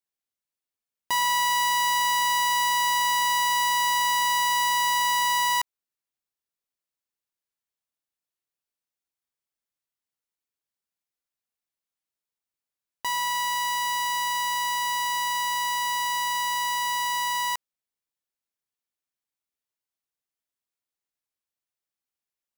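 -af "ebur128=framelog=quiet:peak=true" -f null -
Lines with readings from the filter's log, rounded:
Integrated loudness:
  I:         -23.5 LUFS
  Threshold: -33.6 LUFS
Loudness range:
  LRA:        11.4 LU
  Threshold: -45.3 LUFS
  LRA low:   -33.3 LUFS
  LRA high:  -21.9 LUFS
True peak:
  Peak:      -16.4 dBFS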